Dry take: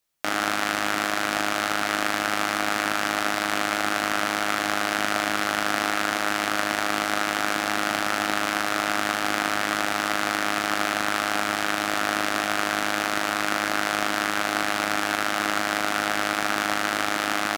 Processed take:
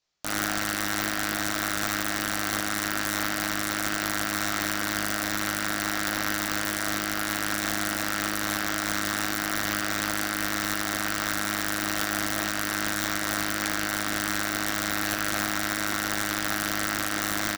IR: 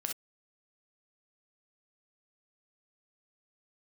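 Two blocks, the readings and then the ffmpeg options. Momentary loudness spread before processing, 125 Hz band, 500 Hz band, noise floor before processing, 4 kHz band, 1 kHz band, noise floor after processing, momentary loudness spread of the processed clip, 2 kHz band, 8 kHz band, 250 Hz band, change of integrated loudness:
0 LU, +3.5 dB, -6.0 dB, -27 dBFS, -2.5 dB, -6.5 dB, -30 dBFS, 1 LU, -3.5 dB, +2.0 dB, -1.0 dB, -2.5 dB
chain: -filter_complex "[0:a]highshelf=f=2.9k:g=-11,aecho=1:1:20|48|87.2|142.1|218.9:0.631|0.398|0.251|0.158|0.1,aresample=16000,aresample=44100,alimiter=limit=-14.5dB:level=0:latency=1:release=269,equalizer=f=4.9k:t=o:w=1.3:g=11,aeval=exprs='(mod(5.31*val(0)+1,2)-1)/5.31':c=same,asplit=2[a][b];[1:a]atrim=start_sample=2205,highshelf=f=8.1k:g=9[c];[b][c]afir=irnorm=-1:irlink=0,volume=-9dB[d];[a][d]amix=inputs=2:normalize=0,volume=-3.5dB"

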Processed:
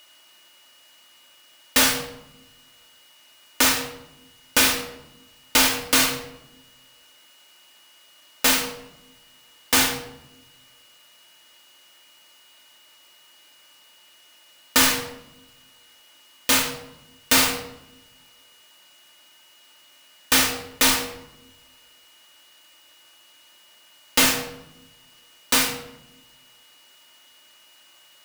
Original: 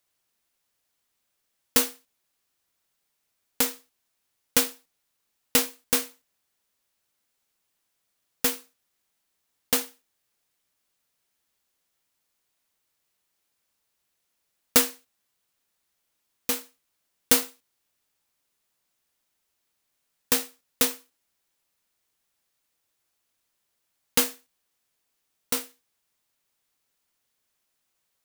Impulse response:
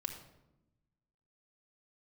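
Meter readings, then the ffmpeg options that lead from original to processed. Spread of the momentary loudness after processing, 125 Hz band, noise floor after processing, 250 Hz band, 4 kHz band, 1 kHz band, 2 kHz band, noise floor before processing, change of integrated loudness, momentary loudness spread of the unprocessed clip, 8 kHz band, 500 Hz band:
16 LU, +9.5 dB, -54 dBFS, +6.0 dB, +9.5 dB, +10.5 dB, +11.5 dB, -77 dBFS, +5.0 dB, 11 LU, +6.0 dB, +3.5 dB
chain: -filter_complex "[0:a]asplit=2[a][b];[b]highpass=f=720:p=1,volume=33dB,asoftclip=type=tanh:threshold=-3dB[c];[a][c]amix=inputs=2:normalize=0,lowpass=f=4.3k:p=1,volume=-6dB,aeval=exprs='val(0)+0.00501*sin(2*PI*2900*n/s)':c=same[d];[1:a]atrim=start_sample=2205[e];[d][e]afir=irnorm=-1:irlink=0"

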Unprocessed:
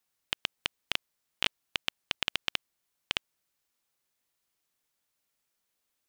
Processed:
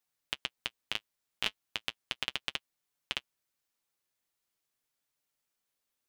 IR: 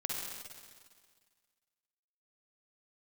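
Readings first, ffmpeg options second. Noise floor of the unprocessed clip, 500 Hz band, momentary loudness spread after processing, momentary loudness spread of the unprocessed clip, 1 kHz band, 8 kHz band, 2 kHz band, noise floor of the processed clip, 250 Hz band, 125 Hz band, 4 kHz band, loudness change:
-81 dBFS, -3.5 dB, 5 LU, 5 LU, -4.0 dB, -4.0 dB, -4.0 dB, -85 dBFS, -4.0 dB, -3.5 dB, -4.0 dB, -4.0 dB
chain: -af "flanger=delay=6.7:depth=3.1:regen=-38:speed=0.37:shape=sinusoidal"

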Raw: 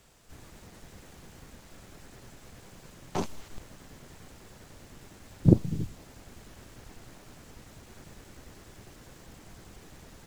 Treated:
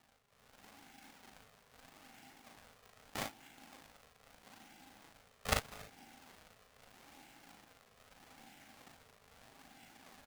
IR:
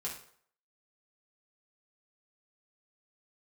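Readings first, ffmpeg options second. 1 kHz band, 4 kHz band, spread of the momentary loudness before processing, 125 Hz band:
-2.0 dB, +2.5 dB, 17 LU, -22.0 dB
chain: -filter_complex "[0:a]aeval=exprs='if(lt(val(0),0),0.708*val(0),val(0))':c=same,asplit=3[a][b][c];[a]bandpass=f=530:t=q:w=8,volume=0dB[d];[b]bandpass=f=1.84k:t=q:w=8,volume=-6dB[e];[c]bandpass=f=2.48k:t=q:w=8,volume=-9dB[f];[d][e][f]amix=inputs=3:normalize=0,equalizer=f=1.1k:w=0.58:g=-9,acrusher=samples=41:mix=1:aa=0.000001:lfo=1:lforange=65.6:lforate=0.79,highpass=f=180:w=0.5412,highpass=f=180:w=1.3066,equalizer=f=240:w=0.45:g=-12,aeval=exprs='val(0)*sin(2*PI*270*n/s)':c=same,aecho=1:1:39|57:0.631|0.335,volume=18dB"

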